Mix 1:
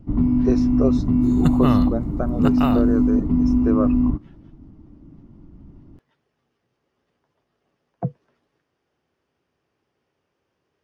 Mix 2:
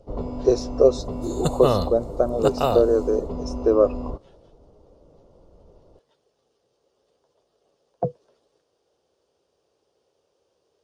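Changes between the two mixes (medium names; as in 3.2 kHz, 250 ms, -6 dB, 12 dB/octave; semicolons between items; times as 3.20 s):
first sound: add resonant low shelf 380 Hz -7 dB, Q 3; master: add graphic EQ 125/250/500/2000/4000/8000 Hz -5/-6/+12/-10/+7/+11 dB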